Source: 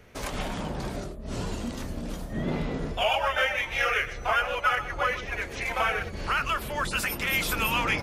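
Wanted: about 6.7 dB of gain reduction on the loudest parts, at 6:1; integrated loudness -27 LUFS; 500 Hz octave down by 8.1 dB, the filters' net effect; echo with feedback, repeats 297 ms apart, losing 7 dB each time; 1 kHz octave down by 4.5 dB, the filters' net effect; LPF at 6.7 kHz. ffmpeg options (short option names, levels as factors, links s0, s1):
-af "lowpass=6700,equalizer=f=500:t=o:g=-9,equalizer=f=1000:t=o:g=-4,acompressor=threshold=0.0316:ratio=6,aecho=1:1:297|594|891|1188|1485:0.447|0.201|0.0905|0.0407|0.0183,volume=2.11"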